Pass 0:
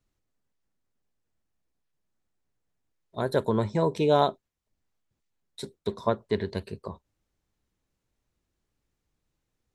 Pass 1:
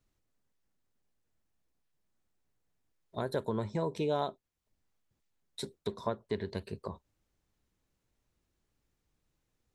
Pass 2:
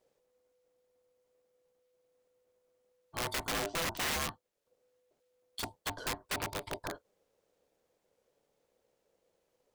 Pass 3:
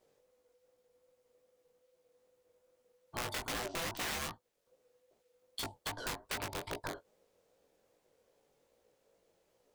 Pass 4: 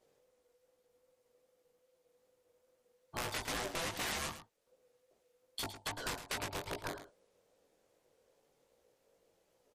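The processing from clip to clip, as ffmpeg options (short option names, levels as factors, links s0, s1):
-af "acompressor=threshold=0.0158:ratio=2"
-af "aeval=exprs='val(0)*sin(2*PI*500*n/s)':c=same,aeval=exprs='(mod(42.2*val(0)+1,2)-1)/42.2':c=same,volume=1.78"
-af "acompressor=threshold=0.01:ratio=4,flanger=delay=16.5:depth=6.3:speed=2.5,volume=2.11"
-filter_complex "[0:a]asplit=2[s0][s1];[s1]aecho=0:1:109:0.266[s2];[s0][s2]amix=inputs=2:normalize=0" -ar 44100 -c:a libmp3lame -b:a 56k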